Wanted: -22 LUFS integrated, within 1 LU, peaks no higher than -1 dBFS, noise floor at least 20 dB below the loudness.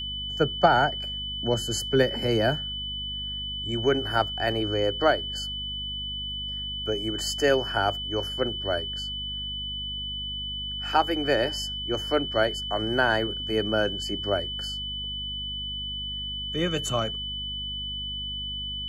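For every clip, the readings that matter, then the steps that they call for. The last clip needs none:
hum 50 Hz; highest harmonic 250 Hz; hum level -37 dBFS; steady tone 3 kHz; tone level -31 dBFS; loudness -27.0 LUFS; peak level -6.0 dBFS; loudness target -22.0 LUFS
-> de-hum 50 Hz, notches 5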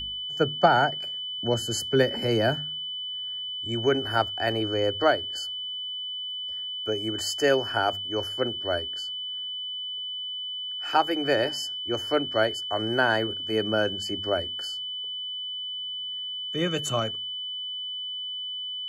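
hum not found; steady tone 3 kHz; tone level -31 dBFS
-> band-stop 3 kHz, Q 30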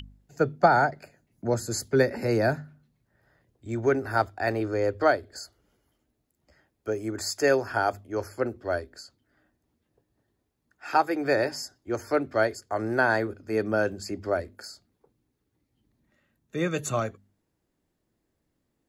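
steady tone not found; loudness -27.0 LUFS; peak level -6.5 dBFS; loudness target -22.0 LUFS
-> trim +5 dB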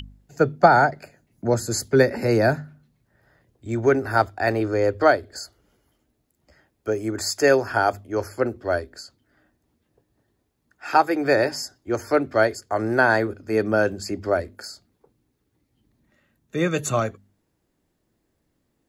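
loudness -22.0 LUFS; peak level -1.5 dBFS; noise floor -73 dBFS

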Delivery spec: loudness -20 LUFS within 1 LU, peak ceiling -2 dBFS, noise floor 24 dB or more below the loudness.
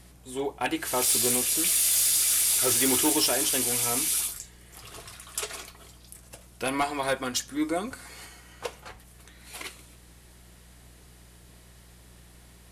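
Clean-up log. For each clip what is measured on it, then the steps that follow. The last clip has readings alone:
clipped samples 0.1%; clipping level -17.5 dBFS; hum 60 Hz; highest harmonic 180 Hz; hum level -51 dBFS; loudness -23.5 LUFS; peak level -17.5 dBFS; loudness target -20.0 LUFS
-> clip repair -17.5 dBFS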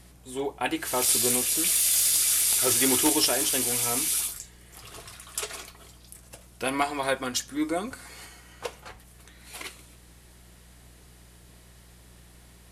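clipped samples 0.0%; hum 60 Hz; highest harmonic 180 Hz; hum level -51 dBFS
-> de-hum 60 Hz, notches 3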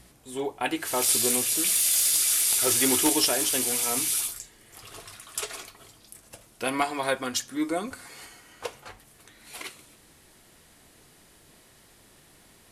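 hum not found; loudness -23.5 LUFS; peak level -8.5 dBFS; loudness target -20.0 LUFS
-> trim +3.5 dB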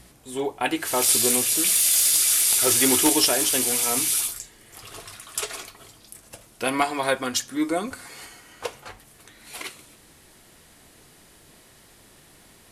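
loudness -20.0 LUFS; peak level -5.0 dBFS; noise floor -53 dBFS

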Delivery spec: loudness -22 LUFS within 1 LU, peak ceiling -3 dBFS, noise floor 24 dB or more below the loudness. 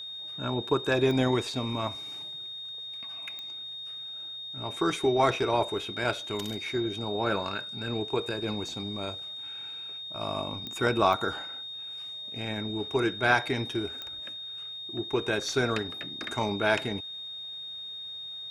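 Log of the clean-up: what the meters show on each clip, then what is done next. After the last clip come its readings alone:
clicks found 5; steady tone 3.7 kHz; tone level -37 dBFS; loudness -30.5 LUFS; peak level -8.5 dBFS; loudness target -22.0 LUFS
-> de-click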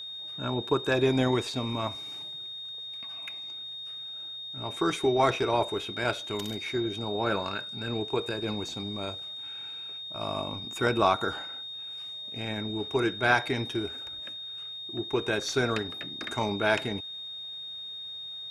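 clicks found 0; steady tone 3.7 kHz; tone level -37 dBFS
-> band-stop 3.7 kHz, Q 30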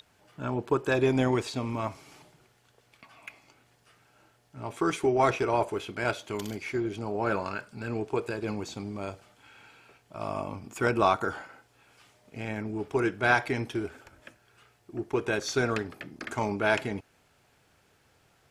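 steady tone not found; loudness -30.0 LUFS; peak level -8.5 dBFS; loudness target -22.0 LUFS
-> trim +8 dB; peak limiter -3 dBFS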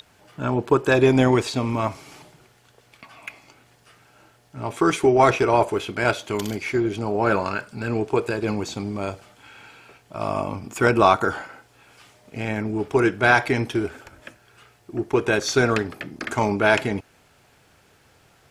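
loudness -22.0 LUFS; peak level -3.0 dBFS; noise floor -58 dBFS

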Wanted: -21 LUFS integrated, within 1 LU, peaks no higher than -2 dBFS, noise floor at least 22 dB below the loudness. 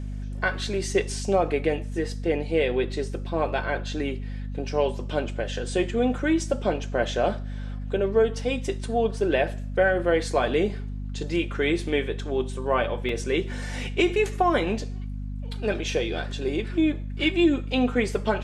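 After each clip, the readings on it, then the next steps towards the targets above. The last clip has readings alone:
dropouts 1; longest dropout 2.8 ms; hum 50 Hz; highest harmonic 250 Hz; hum level -30 dBFS; loudness -26.0 LUFS; peak level -8.5 dBFS; loudness target -21.0 LUFS
-> interpolate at 13.09 s, 2.8 ms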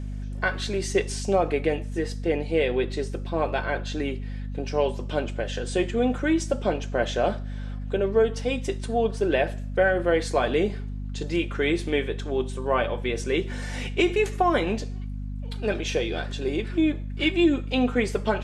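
dropouts 0; hum 50 Hz; highest harmonic 250 Hz; hum level -30 dBFS
-> hum notches 50/100/150/200/250 Hz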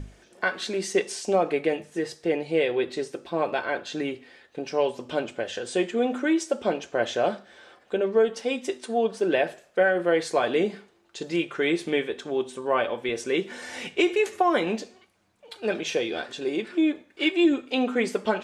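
hum not found; loudness -26.5 LUFS; peak level -9.0 dBFS; loudness target -21.0 LUFS
-> trim +5.5 dB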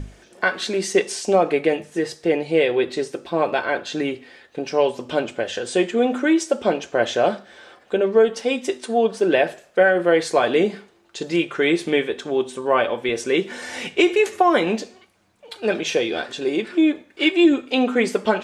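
loudness -21.0 LUFS; peak level -3.5 dBFS; noise floor -54 dBFS

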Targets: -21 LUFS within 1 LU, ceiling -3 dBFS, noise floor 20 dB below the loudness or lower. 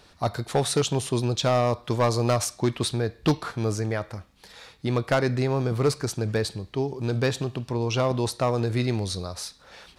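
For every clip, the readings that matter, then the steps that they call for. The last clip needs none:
clipped samples 0.7%; clipping level -15.0 dBFS; loudness -26.0 LUFS; peak level -15.0 dBFS; loudness target -21.0 LUFS
-> clip repair -15 dBFS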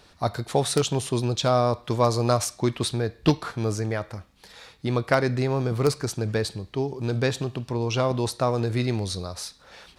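clipped samples 0.0%; loudness -25.5 LUFS; peak level -6.0 dBFS; loudness target -21.0 LUFS
-> trim +4.5 dB; peak limiter -3 dBFS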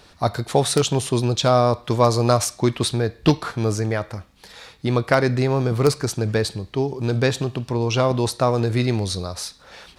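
loudness -21.0 LUFS; peak level -3.0 dBFS; noise floor -51 dBFS

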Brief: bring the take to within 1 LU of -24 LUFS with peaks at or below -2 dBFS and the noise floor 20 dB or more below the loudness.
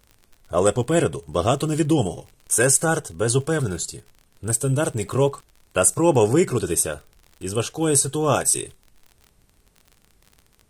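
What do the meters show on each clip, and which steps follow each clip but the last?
tick rate 44 per s; loudness -21.0 LUFS; peak level -3.5 dBFS; loudness target -24.0 LUFS
-> de-click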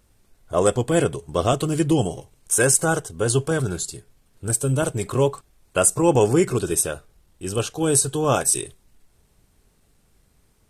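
tick rate 0.28 per s; loudness -21.0 LUFS; peak level -3.5 dBFS; loudness target -24.0 LUFS
-> trim -3 dB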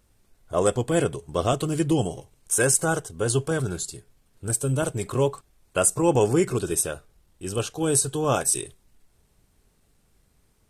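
loudness -24.0 LUFS; peak level -6.5 dBFS; noise floor -65 dBFS

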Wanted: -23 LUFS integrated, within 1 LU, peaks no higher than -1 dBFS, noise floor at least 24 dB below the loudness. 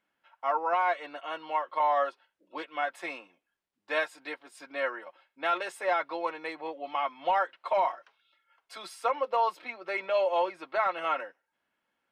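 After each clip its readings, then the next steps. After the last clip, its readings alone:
loudness -30.5 LUFS; peak level -17.5 dBFS; loudness target -23.0 LUFS
-> trim +7.5 dB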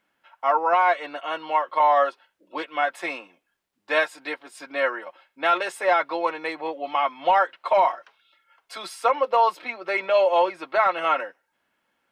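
loudness -23.0 LUFS; peak level -10.0 dBFS; noise floor -75 dBFS

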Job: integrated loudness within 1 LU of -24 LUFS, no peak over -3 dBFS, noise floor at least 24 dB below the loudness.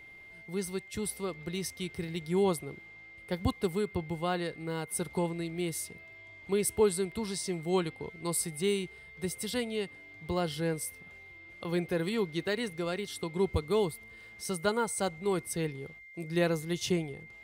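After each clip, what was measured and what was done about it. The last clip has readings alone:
steady tone 2.1 kHz; tone level -49 dBFS; loudness -33.0 LUFS; peak level -15.0 dBFS; loudness target -24.0 LUFS
-> band-stop 2.1 kHz, Q 30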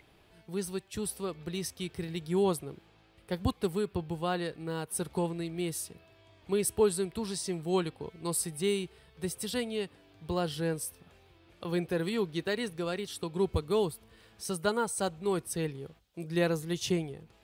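steady tone not found; loudness -33.0 LUFS; peak level -14.5 dBFS; loudness target -24.0 LUFS
-> trim +9 dB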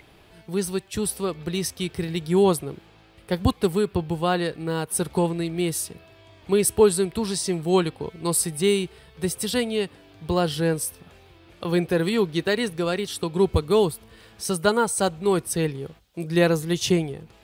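loudness -24.0 LUFS; peak level -5.5 dBFS; noise floor -53 dBFS

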